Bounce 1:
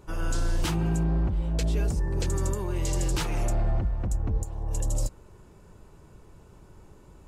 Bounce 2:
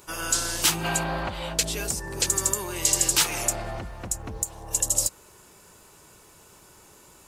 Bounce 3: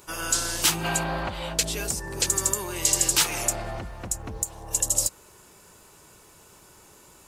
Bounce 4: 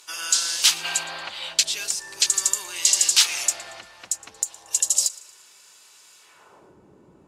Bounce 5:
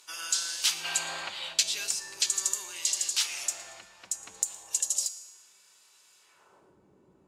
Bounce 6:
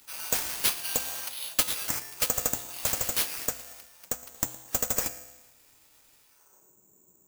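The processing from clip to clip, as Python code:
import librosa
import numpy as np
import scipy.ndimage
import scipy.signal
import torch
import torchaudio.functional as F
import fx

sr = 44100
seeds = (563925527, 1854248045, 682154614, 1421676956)

y1 = fx.spec_box(x, sr, start_s=0.84, length_s=0.7, low_hz=510.0, high_hz=4900.0, gain_db=9)
y1 = fx.tilt_eq(y1, sr, slope=4.0)
y1 = y1 * librosa.db_to_amplitude(4.5)
y2 = y1
y3 = fx.filter_sweep_bandpass(y2, sr, from_hz=4300.0, to_hz=230.0, start_s=6.18, end_s=6.78, q=1.0)
y3 = fx.echo_feedback(y3, sr, ms=115, feedback_pct=43, wet_db=-21.0)
y3 = y3 * librosa.db_to_amplitude(7.5)
y4 = fx.rider(y3, sr, range_db=5, speed_s=0.5)
y4 = fx.comb_fb(y4, sr, f0_hz=190.0, decay_s=1.1, harmonics='all', damping=0.0, mix_pct=70)
y4 = y4 * librosa.db_to_amplitude(2.5)
y5 = (np.kron(y4[::6], np.eye(6)[0]) * 6)[:len(y4)]
y5 = y5 * librosa.db_to_amplitude(-7.0)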